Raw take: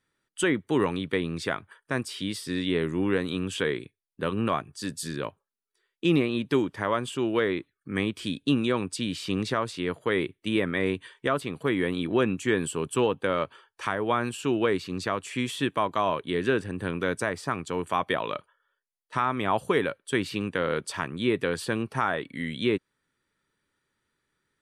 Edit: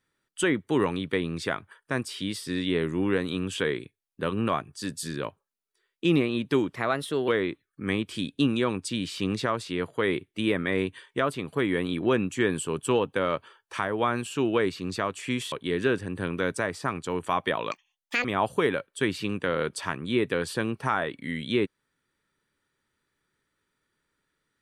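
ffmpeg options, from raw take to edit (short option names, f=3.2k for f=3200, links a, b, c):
-filter_complex "[0:a]asplit=6[a][b][c][d][e][f];[a]atrim=end=6.754[g];[b]atrim=start=6.75:end=7.36,asetpts=PTS-STARTPTS,asetrate=50715,aresample=44100,atrim=end_sample=23392,asetpts=PTS-STARTPTS[h];[c]atrim=start=7.356:end=15.602[i];[d]atrim=start=16.148:end=18.344[j];[e]atrim=start=18.34:end=19.36,asetpts=PTS-STARTPTS,asetrate=84231,aresample=44100[k];[f]atrim=start=19.356[l];[g][h]acrossfade=d=0.004:c1=hsin:c2=hsin[m];[m][i]acrossfade=d=0.004:c1=hsin:c2=hsin[n];[n][j]acrossfade=d=0.004:c1=hsin:c2=hsin[o];[o][k]acrossfade=d=0.004:c1=hsin:c2=hsin[p];[p][l]acrossfade=d=0.004:c1=hsin:c2=hsin"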